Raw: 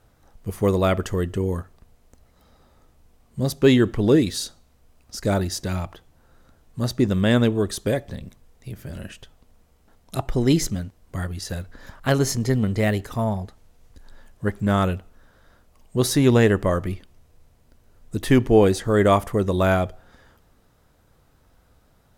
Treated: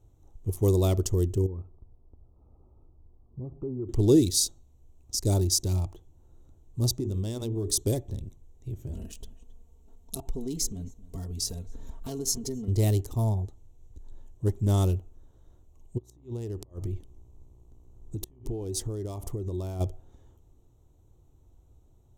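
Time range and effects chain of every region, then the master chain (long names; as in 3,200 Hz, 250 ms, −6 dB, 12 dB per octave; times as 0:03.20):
0:01.46–0:03.89: linear-phase brick-wall low-pass 1,400 Hz + downward compressor 3 to 1, threshold −33 dBFS + windowed peak hold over 3 samples
0:06.95–0:07.83: mains-hum notches 60/120/180/240/300/360/420/480 Hz + downward compressor 8 to 1, threshold −23 dBFS
0:08.93–0:12.68: comb filter 4.4 ms, depth 90% + downward compressor 3 to 1, threshold −30 dBFS + single-tap delay 269 ms −18 dB
0:15.97–0:19.79: downward compressor 20 to 1, threshold −26 dBFS + gate with flip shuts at −21 dBFS, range −29 dB + hum with harmonics 60 Hz, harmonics 21, −58 dBFS −5 dB per octave
whole clip: adaptive Wiener filter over 9 samples; drawn EQ curve 110 Hz 0 dB, 200 Hz −12 dB, 360 Hz −1 dB, 520 Hz −13 dB, 900 Hz −11 dB, 1,600 Hz −27 dB, 5,600 Hz +5 dB; level +2 dB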